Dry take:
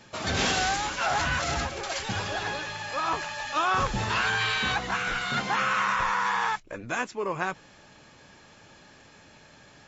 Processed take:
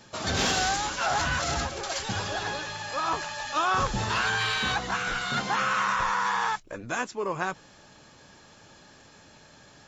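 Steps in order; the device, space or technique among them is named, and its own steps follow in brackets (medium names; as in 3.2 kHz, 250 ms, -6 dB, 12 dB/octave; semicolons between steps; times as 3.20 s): exciter from parts (in parallel at -7 dB: high-pass 2.1 kHz 24 dB/octave + saturation -24.5 dBFS, distortion -19 dB)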